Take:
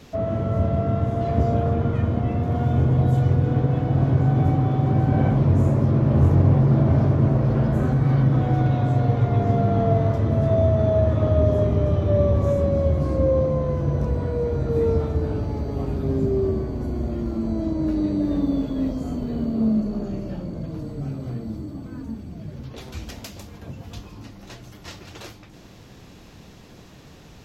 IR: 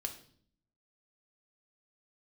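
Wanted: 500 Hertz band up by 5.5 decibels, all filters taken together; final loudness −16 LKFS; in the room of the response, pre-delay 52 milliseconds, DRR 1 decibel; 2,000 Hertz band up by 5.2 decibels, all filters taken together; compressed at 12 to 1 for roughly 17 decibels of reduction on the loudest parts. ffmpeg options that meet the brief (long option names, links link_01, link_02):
-filter_complex "[0:a]equalizer=frequency=500:width_type=o:gain=6.5,equalizer=frequency=2000:width_type=o:gain=6.5,acompressor=threshold=-29dB:ratio=12,asplit=2[link_01][link_02];[1:a]atrim=start_sample=2205,adelay=52[link_03];[link_02][link_03]afir=irnorm=-1:irlink=0,volume=-0.5dB[link_04];[link_01][link_04]amix=inputs=2:normalize=0,volume=15dB"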